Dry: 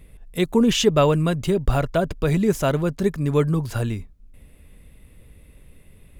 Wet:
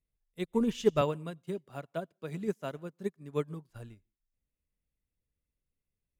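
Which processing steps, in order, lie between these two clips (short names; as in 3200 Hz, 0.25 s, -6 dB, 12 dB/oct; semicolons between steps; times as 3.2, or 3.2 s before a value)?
1.01–3.7 HPF 140 Hz 24 dB/oct; reverb, pre-delay 82 ms, DRR 21 dB; upward expander 2.5:1, over -34 dBFS; gain -6.5 dB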